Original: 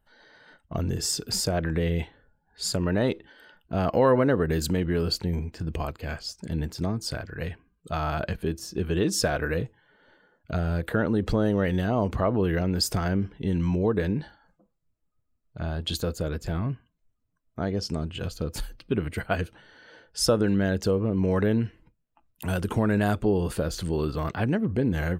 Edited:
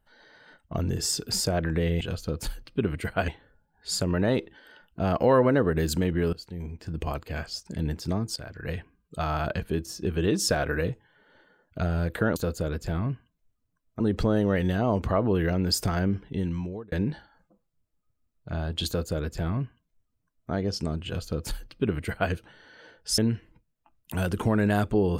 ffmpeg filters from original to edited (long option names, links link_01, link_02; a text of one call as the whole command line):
ffmpeg -i in.wav -filter_complex "[0:a]asplit=9[link_01][link_02][link_03][link_04][link_05][link_06][link_07][link_08][link_09];[link_01]atrim=end=2.012[link_10];[link_02]atrim=start=18.138:end=19.412[link_11];[link_03]atrim=start=2.008:end=5.06,asetpts=PTS-STARTPTS,afade=type=out:start_time=3.048:duration=0.004:curve=hsin:silence=0.0841395[link_12];[link_04]atrim=start=5.06:end=7.09,asetpts=PTS-STARTPTS,afade=type=in:duration=0.78:silence=0.0841395,afade=type=out:start_time=2.026:duration=0.004:curve=hsin:silence=0.251189[link_13];[link_05]atrim=start=7.09:end=11.092,asetpts=PTS-STARTPTS,afade=type=in:duration=0.31:silence=0.251189[link_14];[link_06]atrim=start=15.958:end=17.602[link_15];[link_07]atrim=start=11.088:end=14.01,asetpts=PTS-STARTPTS,afade=type=out:start_time=2.252:duration=0.67[link_16];[link_08]atrim=start=14.01:end=20.272,asetpts=PTS-STARTPTS,afade=type=in:duration=0.004:curve=hsin[link_17];[link_09]atrim=start=21.488[link_18];[link_10][link_11]acrossfade=duration=0.004:curve1=hsin:curve2=hsin[link_19];[link_12][link_13][link_14]concat=n=3:v=0:a=1[link_20];[link_19][link_20]acrossfade=duration=0.004:curve1=hsin:curve2=hsin[link_21];[link_21][link_15]acrossfade=duration=0.004:curve1=hsin:curve2=hsin[link_22];[link_16][link_17]concat=n=2:v=0:a=1[link_23];[link_22][link_23]acrossfade=duration=0.004:curve1=hsin:curve2=hsin[link_24];[link_24][link_18]acrossfade=duration=0.004:curve1=hsin:curve2=hsin" out.wav